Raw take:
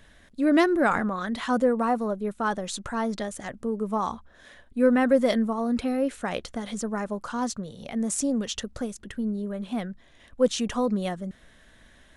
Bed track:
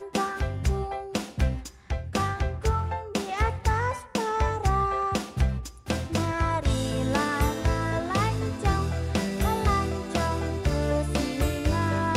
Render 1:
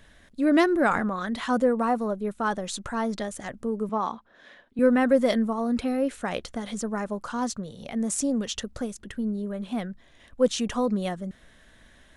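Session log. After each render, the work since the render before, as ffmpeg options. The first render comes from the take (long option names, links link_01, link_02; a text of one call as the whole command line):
ffmpeg -i in.wav -filter_complex "[0:a]asettb=1/sr,asplit=3[link_01][link_02][link_03];[link_01]atrim=end=3.894[link_04];[link_02]atrim=start=3.89:end=4.79,asetpts=PTS-STARTPTS,afade=type=in:duration=0.004:curve=qsin,afade=type=out:start_time=0.896:duration=0.004:curve=qsin,acrossover=split=160 5300:gain=0.112 1 0.126[link_05][link_06][link_07];[link_05][link_06][link_07]amix=inputs=3:normalize=0[link_08];[link_03]atrim=start=4.786[link_09];[link_04][link_08]acrossfade=duration=0.004:curve1=hsin:curve2=qsin[link_10];[link_10][link_09]acrossfade=duration=0.004:curve1=qsin:curve2=hsin" out.wav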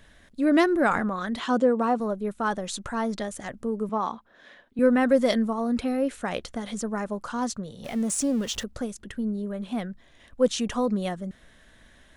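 ffmpeg -i in.wav -filter_complex "[0:a]asettb=1/sr,asplit=3[link_01][link_02][link_03];[link_01]atrim=end=1.394[link_04];[link_02]atrim=start=1.39:end=2,asetpts=PTS-STARTPTS,afade=type=in:duration=0.004:curve=qsin,afade=type=out:start_time=0.606:duration=0.004:curve=qsin,highpass=110,equalizer=frequency=360:width_type=q:width=4:gain=9,equalizer=frequency=2000:width_type=q:width=4:gain=-4,equalizer=frequency=3200:width_type=q:width=4:gain=4,lowpass=frequency=8200:width=0.5412,lowpass=frequency=8200:width=1.3066[link_05];[link_03]atrim=start=1.996[link_06];[link_04][link_05]acrossfade=duration=0.004:curve1=hsin:curve2=qsin[link_07];[link_07][link_06]acrossfade=duration=0.004:curve1=qsin:curve2=hsin,asettb=1/sr,asplit=3[link_08][link_09][link_10];[link_08]atrim=end=5.034[link_11];[link_09]atrim=start=5.03:end=5.51,asetpts=PTS-STARTPTS,afade=type=in:duration=0.004:curve=qsin,afade=type=out:start_time=0.476:duration=0.004:curve=qsin,equalizer=frequency=5100:width_type=o:width=1.4:gain=4[link_12];[link_10]atrim=start=5.506[link_13];[link_11][link_12]acrossfade=duration=0.004:curve1=hsin:curve2=qsin[link_14];[link_14][link_13]acrossfade=duration=0.004:curve1=qsin:curve2=hsin,asettb=1/sr,asplit=3[link_15][link_16][link_17];[link_15]atrim=end=7.844[link_18];[link_16]atrim=start=7.84:end=8.64,asetpts=PTS-STARTPTS,afade=type=in:duration=0.004:curve=qsin,afade=type=out:start_time=0.796:duration=0.004:curve=qsin,aeval=exprs='val(0)+0.5*0.0119*sgn(val(0))':channel_layout=same[link_19];[link_17]atrim=start=8.636[link_20];[link_18][link_19]acrossfade=duration=0.004:curve1=hsin:curve2=qsin[link_21];[link_21][link_20]acrossfade=duration=0.004:curve1=qsin:curve2=hsin" out.wav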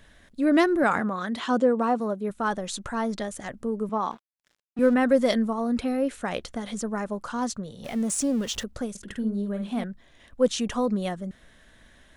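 ffmpeg -i in.wav -filter_complex "[0:a]asettb=1/sr,asplit=3[link_01][link_02][link_03];[link_01]atrim=end=0.834[link_04];[link_02]atrim=start=0.83:end=2.3,asetpts=PTS-STARTPTS,afade=type=in:duration=0.004:curve=qsin,afade=type=out:start_time=1.466:duration=0.004:curve=qsin,highpass=94[link_05];[link_03]atrim=start=2.296[link_06];[link_04][link_05]acrossfade=duration=0.004:curve1=hsin:curve2=qsin[link_07];[link_07][link_06]acrossfade=duration=0.004:curve1=qsin:curve2=hsin,asettb=1/sr,asplit=3[link_08][link_09][link_10];[link_08]atrim=end=4.114[link_11];[link_09]atrim=start=4.11:end=4.94,asetpts=PTS-STARTPTS,afade=type=in:duration=0.004:curve=qsin,afade=type=out:start_time=0.826:duration=0.004:curve=qsin,aeval=exprs='sgn(val(0))*max(abs(val(0))-0.00596,0)':channel_layout=same[link_12];[link_10]atrim=start=4.936[link_13];[link_11][link_12]acrossfade=duration=0.004:curve1=hsin:curve2=qsin[link_14];[link_14][link_13]acrossfade=duration=0.004:curve1=qsin:curve2=hsin,asettb=1/sr,asplit=3[link_15][link_16][link_17];[link_15]atrim=end=8.904[link_18];[link_16]atrim=start=8.9:end=9.84,asetpts=PTS-STARTPTS,afade=type=in:duration=0.004:curve=qsin,afade=type=out:start_time=0.936:duration=0.004:curve=qsin,asplit=2[link_19][link_20];[link_20]adelay=50,volume=-6dB[link_21];[link_19][link_21]amix=inputs=2:normalize=0,atrim=end_sample=41454[link_22];[link_17]atrim=start=9.836[link_23];[link_18][link_22]acrossfade=duration=0.004:curve1=hsin:curve2=qsin[link_24];[link_24][link_23]acrossfade=duration=0.004:curve1=qsin:curve2=hsin" out.wav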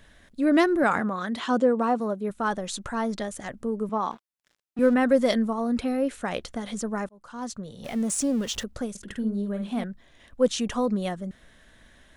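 ffmpeg -i in.wav -filter_complex "[0:a]asplit=2[link_01][link_02];[link_01]atrim=end=7.09,asetpts=PTS-STARTPTS,afade=type=out:start_time=7.086:duration=0.004:curve=hsin[link_03];[link_02]atrim=start=7.09,asetpts=PTS-STARTPTS,afade=type=in:duration=0.68[link_04];[link_03][link_04]concat=n=2:v=0:a=1" out.wav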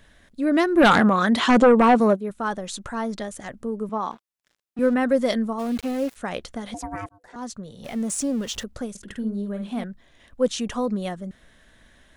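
ffmpeg -i in.wav -filter_complex "[0:a]asplit=3[link_01][link_02][link_03];[link_01]afade=type=out:start_time=0.76:duration=0.02[link_04];[link_02]aeval=exprs='0.335*sin(PI/2*2.24*val(0)/0.335)':channel_layout=same,afade=type=in:start_time=0.76:duration=0.02,afade=type=out:start_time=2.15:duration=0.02[link_05];[link_03]afade=type=in:start_time=2.15:duration=0.02[link_06];[link_04][link_05][link_06]amix=inputs=3:normalize=0,asplit=3[link_07][link_08][link_09];[link_07]afade=type=out:start_time=5.58:duration=0.02[link_10];[link_08]aeval=exprs='val(0)*gte(abs(val(0)),0.0178)':channel_layout=same,afade=type=in:start_time=5.58:duration=0.02,afade=type=out:start_time=6.15:duration=0.02[link_11];[link_09]afade=type=in:start_time=6.15:duration=0.02[link_12];[link_10][link_11][link_12]amix=inputs=3:normalize=0,asettb=1/sr,asplit=3[link_13][link_14][link_15];[link_13]atrim=end=6.744[link_16];[link_14]atrim=start=6.74:end=7.36,asetpts=PTS-STARTPTS,afade=type=in:duration=0.004:curve=qsin,afade=type=out:start_time=0.616:duration=0.004:curve=qsin,aeval=exprs='val(0)*sin(2*PI*500*n/s)':channel_layout=same[link_17];[link_15]atrim=start=7.356[link_18];[link_16][link_17]acrossfade=duration=0.004:curve1=hsin:curve2=qsin[link_19];[link_19][link_18]acrossfade=duration=0.004:curve1=qsin:curve2=hsin" out.wav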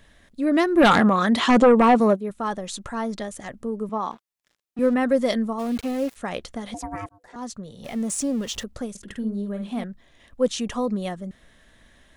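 ffmpeg -i in.wav -af "bandreject=frequency=1500:width=16" out.wav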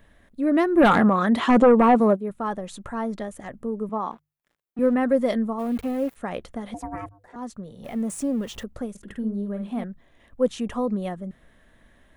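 ffmpeg -i in.wav -af "equalizer=frequency=5400:width_type=o:width=1.9:gain=-11.5,bandreject=frequency=50:width_type=h:width=6,bandreject=frequency=100:width_type=h:width=6,bandreject=frequency=150:width_type=h:width=6" out.wav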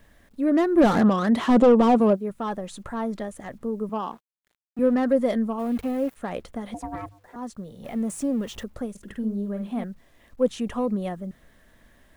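ffmpeg -i in.wav -filter_complex "[0:a]acrossover=split=770[link_01][link_02];[link_02]asoftclip=type=tanh:threshold=-28.5dB[link_03];[link_01][link_03]amix=inputs=2:normalize=0,acrusher=bits=10:mix=0:aa=0.000001" out.wav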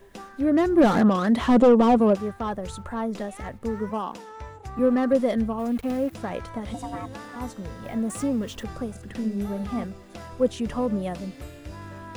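ffmpeg -i in.wav -i bed.wav -filter_complex "[1:a]volume=-14.5dB[link_01];[0:a][link_01]amix=inputs=2:normalize=0" out.wav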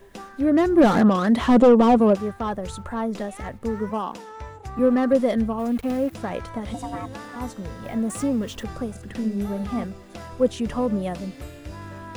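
ffmpeg -i in.wav -af "volume=2dB" out.wav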